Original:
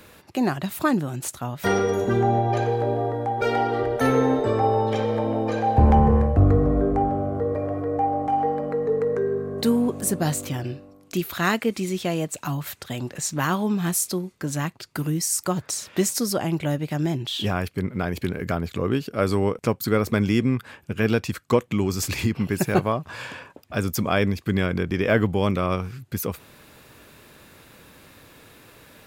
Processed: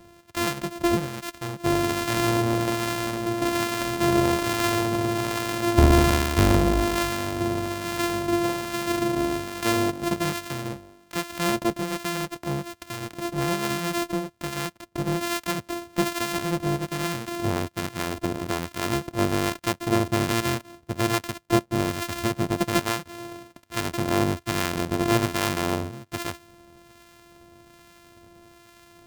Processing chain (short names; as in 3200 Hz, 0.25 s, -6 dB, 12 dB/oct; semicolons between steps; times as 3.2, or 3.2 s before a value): sample sorter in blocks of 128 samples; harmonic tremolo 1.2 Hz, depth 50%, crossover 950 Hz